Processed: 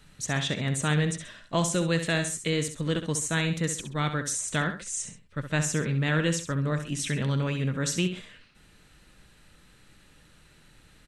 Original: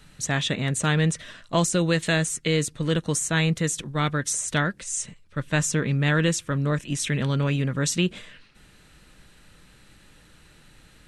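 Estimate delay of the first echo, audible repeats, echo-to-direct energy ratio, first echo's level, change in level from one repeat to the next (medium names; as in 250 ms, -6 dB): 66 ms, 2, -8.5 dB, -9.0 dB, -9.5 dB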